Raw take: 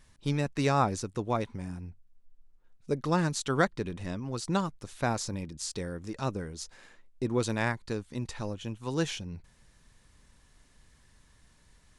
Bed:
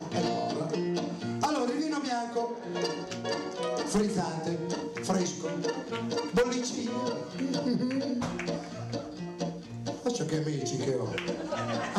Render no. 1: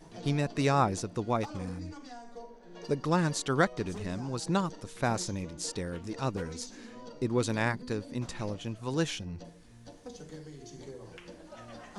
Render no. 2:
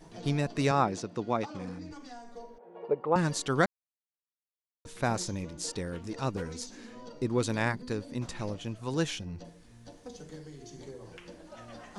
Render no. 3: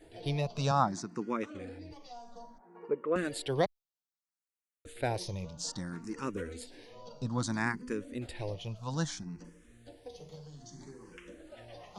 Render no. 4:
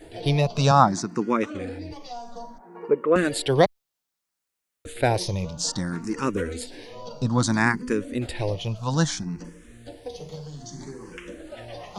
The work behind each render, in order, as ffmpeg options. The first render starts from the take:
-filter_complex "[1:a]volume=-15.5dB[a];[0:a][a]amix=inputs=2:normalize=0"
-filter_complex "[0:a]asettb=1/sr,asplit=3[a][b][c];[a]atrim=end=0.714[d];[b]atrim=start=0.71:end=1.91,asetpts=PTS-STARTPTS,afade=t=in:d=0.004:c=qsin,afade=t=out:st=1.196:d=0.004:c=qsin,highpass=140,lowpass=6k[e];[c]atrim=start=1.906[f];[d][e]acrossfade=d=0.004:c1=hsin:c2=qsin[g];[g][f]acrossfade=d=0.004:c1=qsin:c2=hsin,asettb=1/sr,asplit=3[h][i][j];[h]atrim=end=2.584[k];[i]atrim=start=2.58:end=3.16,asetpts=PTS-STARTPTS,afade=t=in:d=0.004:c=qsin,afade=t=out:st=0.576:d=0.004:c=qsin,highpass=270,equalizer=f=270:t=q:w=4:g=-9,equalizer=f=480:t=q:w=4:g=7,equalizer=f=820:t=q:w=4:g=7,equalizer=f=1.7k:t=q:w=4:g=-10,lowpass=f=2.1k:w=0.5412,lowpass=f=2.1k:w=1.3066[l];[j]atrim=start=3.156[m];[k][l]acrossfade=d=0.004:c1=hsin:c2=qsin[n];[n][m]acrossfade=d=0.004:c1=qsin:c2=hsin,asplit=3[o][p][q];[o]atrim=end=3.66,asetpts=PTS-STARTPTS,afade=t=out:st=3.656:d=0.004:c=hsin[r];[p]atrim=start=3.66:end=4.85,asetpts=PTS-STARTPTS,volume=0[s];[q]atrim=start=4.85,asetpts=PTS-STARTPTS,afade=t=in:d=0.004:c=hsin[t];[r][s][t]concat=n=3:v=0:a=1"
-filter_complex "[0:a]asplit=2[a][b];[b]afreqshift=0.61[c];[a][c]amix=inputs=2:normalize=1"
-af "volume=11dB"

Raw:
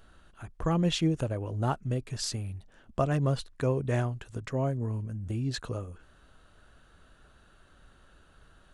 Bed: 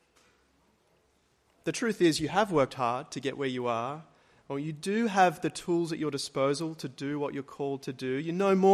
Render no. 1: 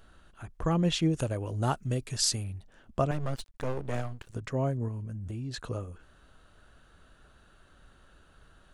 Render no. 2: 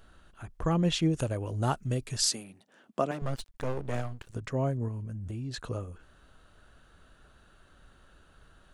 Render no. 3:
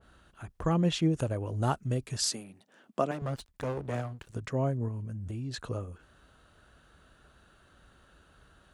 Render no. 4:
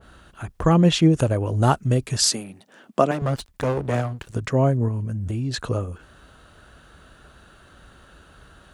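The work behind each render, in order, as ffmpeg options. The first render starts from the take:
-filter_complex "[0:a]asettb=1/sr,asplit=3[a][b][c];[a]atrim=end=1.134[d];[b]atrim=start=1.13:end=2.44,asetpts=PTS-STARTPTS,afade=t=in:d=0.004:c=qsin,afade=t=out:st=1.306:d=0.004:c=qsin,highshelf=f=3.4k:g=9.5[e];[c]atrim=start=2.436[f];[d][e]acrossfade=d=0.004:c1=hsin:c2=qsin[g];[g][f]acrossfade=d=0.004:c1=qsin:c2=hsin,asettb=1/sr,asplit=3[h][i][j];[h]atrim=end=3.114[k];[i]atrim=start=3.11:end=4.35,asetpts=PTS-STARTPTS,afade=t=in:d=0.004:c=qsin,afade=t=out:st=1.236:d=0.004:c=qsin,aeval=exprs='max(val(0),0)':c=same[l];[j]atrim=start=4.346[m];[k][l]acrossfade=d=0.004:c1=hsin:c2=qsin[n];[n][m]acrossfade=d=0.004:c1=qsin:c2=hsin,asettb=1/sr,asplit=3[o][p][q];[o]atrim=end=4.884[r];[p]atrim=start=4.88:end=5.7,asetpts=PTS-STARTPTS,afade=t=in:d=0.004:c=qsin,afade=t=out:st=0.816:d=0.004:c=qsin,acompressor=threshold=-34dB:ratio=3:attack=3.2:release=140:knee=1:detection=peak[s];[q]atrim=start=5.696[t];[r][s]acrossfade=d=0.004:c1=hsin:c2=qsin[u];[u][t]acrossfade=d=0.004:c1=qsin:c2=hsin"
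-filter_complex "[0:a]asettb=1/sr,asplit=3[a][b][c];[a]atrim=end=2.274[d];[b]atrim=start=2.27:end=3.22,asetpts=PTS-STARTPTS,afade=t=in:d=0.004:c=qsin,afade=t=out:st=0.946:d=0.004:c=qsin,highpass=f=190:w=0.5412,highpass=f=190:w=1.3066[e];[c]atrim=start=3.216[f];[d][e]acrossfade=d=0.004:c1=hsin:c2=qsin[g];[g][f]acrossfade=d=0.004:c1=qsin:c2=hsin"
-af "highpass=43,adynamicequalizer=threshold=0.00398:dfrequency=1900:dqfactor=0.7:tfrequency=1900:tqfactor=0.7:attack=5:release=100:ratio=0.375:range=3:mode=cutabove:tftype=highshelf"
-af "volume=10.5dB"

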